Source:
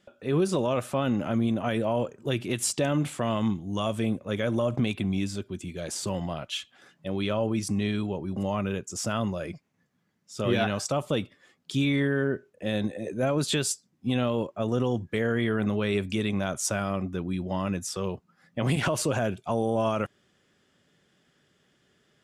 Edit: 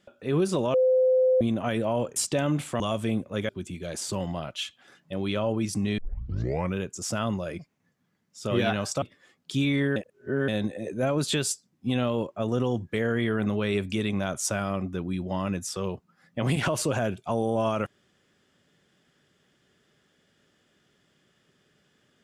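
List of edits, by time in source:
0.74–1.41 bleep 514 Hz -17.5 dBFS
2.16–2.62 cut
3.26–3.75 cut
4.44–5.43 cut
7.92 tape start 0.76 s
10.96–11.22 cut
12.16–12.68 reverse

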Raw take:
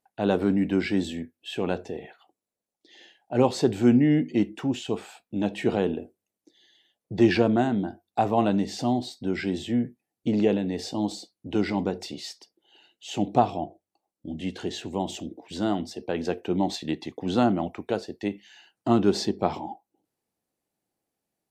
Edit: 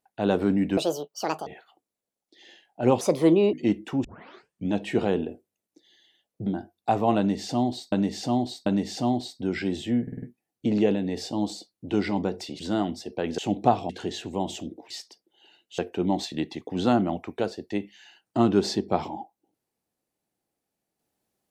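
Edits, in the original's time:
0.77–1.99 speed 175%
3.53–4.24 speed 135%
4.75 tape start 0.67 s
7.17–7.76 cut
8.48–9.22 loop, 3 plays
9.84 stutter 0.05 s, 5 plays
12.21–13.09 swap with 15.5–16.29
13.6–14.49 cut

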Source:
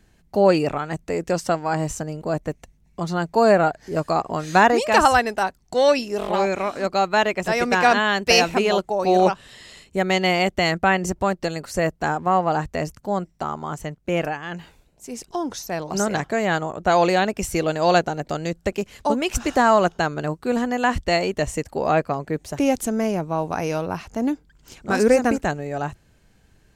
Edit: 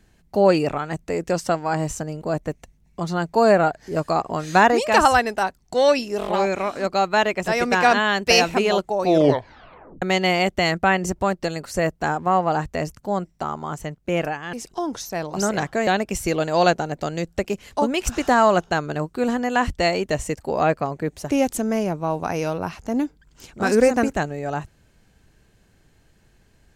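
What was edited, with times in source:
9.05 tape stop 0.97 s
14.53–15.1 cut
16.44–17.15 cut

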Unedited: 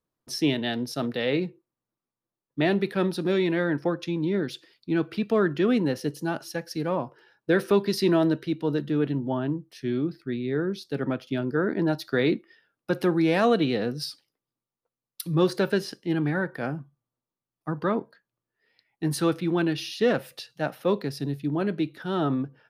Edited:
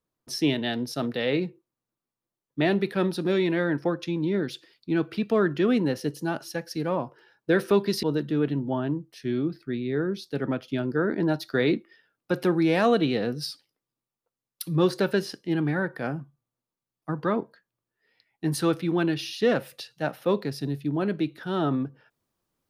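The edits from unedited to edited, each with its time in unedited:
8.03–8.62 cut

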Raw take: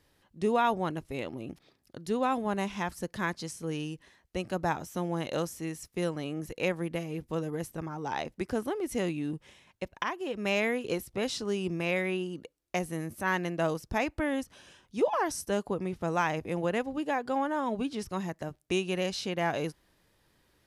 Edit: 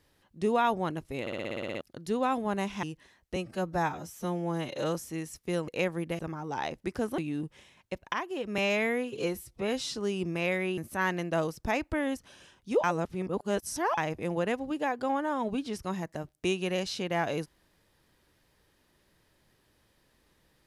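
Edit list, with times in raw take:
1.21 stutter in place 0.06 s, 10 plays
2.83–3.85 cut
4.38–5.44 stretch 1.5×
6.17–6.52 cut
7.03–7.73 cut
8.72–9.08 cut
10.48–11.39 stretch 1.5×
12.22–13.04 cut
15.1–16.24 reverse

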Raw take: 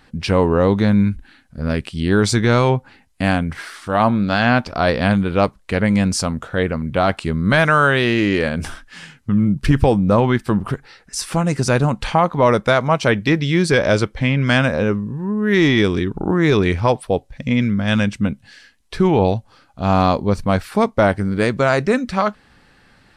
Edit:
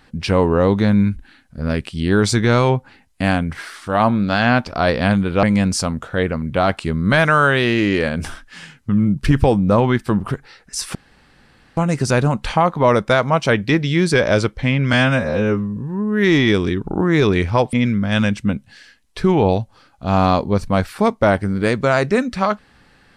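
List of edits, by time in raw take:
5.43–5.83 cut
11.35 insert room tone 0.82 s
14.51–15.07 stretch 1.5×
17.03–17.49 cut

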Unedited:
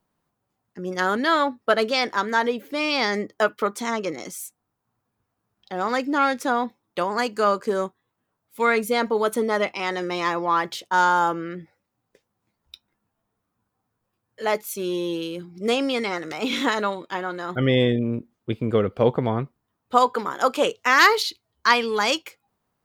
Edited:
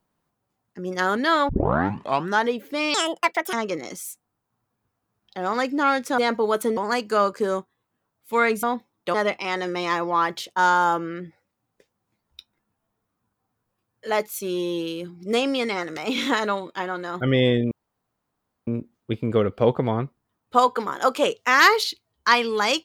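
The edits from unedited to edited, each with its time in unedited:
1.49 tape start 0.94 s
2.94–3.88 speed 159%
6.53–7.04 swap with 8.9–9.49
18.06 insert room tone 0.96 s

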